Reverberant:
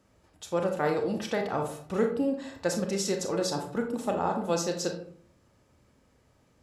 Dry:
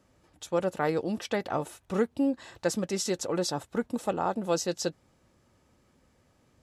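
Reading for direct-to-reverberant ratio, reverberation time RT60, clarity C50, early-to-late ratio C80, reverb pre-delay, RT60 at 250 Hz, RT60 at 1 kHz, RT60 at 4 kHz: 3.5 dB, 0.55 s, 7.0 dB, 12.0 dB, 27 ms, 0.70 s, 0.55 s, 0.35 s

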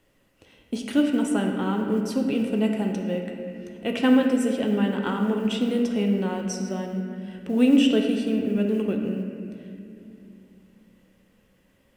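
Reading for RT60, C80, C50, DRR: 2.7 s, 5.0 dB, 4.0 dB, 2.0 dB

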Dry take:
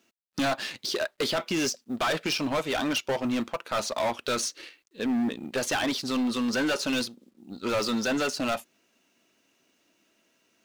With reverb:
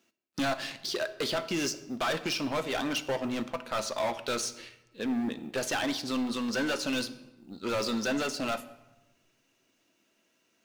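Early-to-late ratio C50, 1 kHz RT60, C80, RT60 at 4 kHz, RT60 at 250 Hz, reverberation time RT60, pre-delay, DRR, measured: 14.5 dB, 1.0 s, 17.0 dB, 0.70 s, 1.3 s, 1.0 s, 6 ms, 10.5 dB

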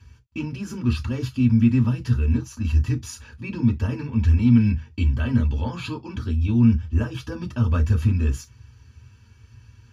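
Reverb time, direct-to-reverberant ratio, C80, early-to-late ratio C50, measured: non-exponential decay, 1.5 dB, 58.0 dB, 25.0 dB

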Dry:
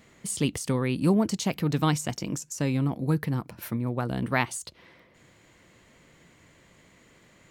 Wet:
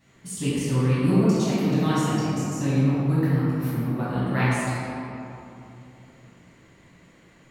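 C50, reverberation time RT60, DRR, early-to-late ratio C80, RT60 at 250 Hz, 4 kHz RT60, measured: −4.5 dB, 2.9 s, −11.5 dB, −2.0 dB, 3.7 s, 1.5 s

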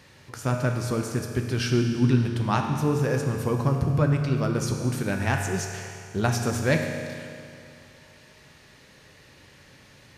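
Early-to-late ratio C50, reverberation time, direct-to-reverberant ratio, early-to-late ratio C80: 4.5 dB, 2.4 s, 3.0 dB, 5.5 dB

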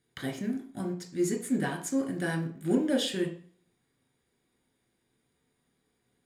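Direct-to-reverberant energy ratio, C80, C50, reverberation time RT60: 1.0 dB, 14.0 dB, 10.0 dB, 0.45 s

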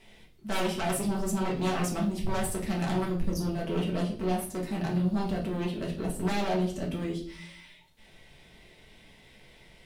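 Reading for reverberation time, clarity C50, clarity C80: 0.50 s, 8.5 dB, 13.5 dB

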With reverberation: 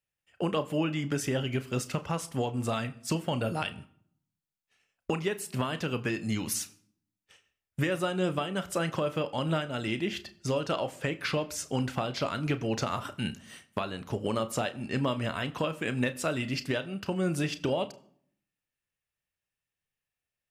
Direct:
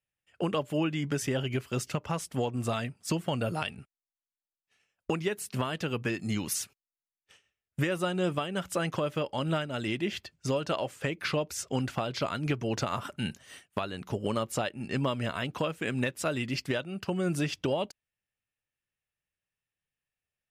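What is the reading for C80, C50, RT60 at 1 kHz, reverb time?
21.0 dB, 19.5 dB, 0.55 s, 0.60 s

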